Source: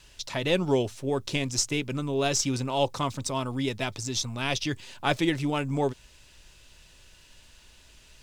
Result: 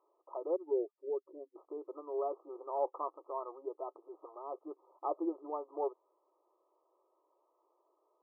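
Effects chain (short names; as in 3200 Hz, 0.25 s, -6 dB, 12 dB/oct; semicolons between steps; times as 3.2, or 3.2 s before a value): 0.56–1.56 spectral contrast raised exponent 2.1; 4.03–4.59 transient shaper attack -7 dB, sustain +10 dB; brick-wall FIR band-pass 310–1300 Hz; gain -7.5 dB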